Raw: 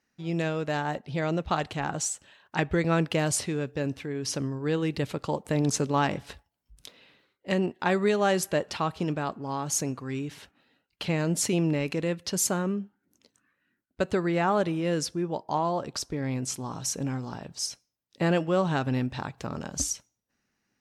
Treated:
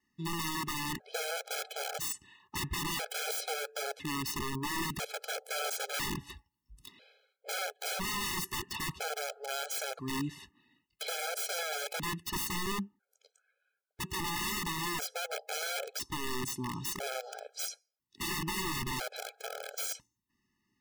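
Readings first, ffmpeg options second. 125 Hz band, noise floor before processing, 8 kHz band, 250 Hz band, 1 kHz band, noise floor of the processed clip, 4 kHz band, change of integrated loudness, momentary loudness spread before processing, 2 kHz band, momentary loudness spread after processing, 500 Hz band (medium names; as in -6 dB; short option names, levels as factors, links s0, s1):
-13.5 dB, -80 dBFS, -5.5 dB, -13.0 dB, -7.0 dB, -85 dBFS, +0.5 dB, -7.0 dB, 9 LU, -2.5 dB, 8 LU, -12.5 dB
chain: -af "aeval=exprs='(mod(22.4*val(0)+1,2)-1)/22.4':c=same,adynamicequalizer=threshold=0.00158:dfrequency=120:dqfactor=4.9:tfrequency=120:tqfactor=4.9:attack=5:release=100:ratio=0.375:range=3:mode=cutabove:tftype=bell,afftfilt=real='re*gt(sin(2*PI*0.5*pts/sr)*(1-2*mod(floor(b*sr/1024/430),2)),0)':imag='im*gt(sin(2*PI*0.5*pts/sr)*(1-2*mod(floor(b*sr/1024/430),2)),0)':win_size=1024:overlap=0.75"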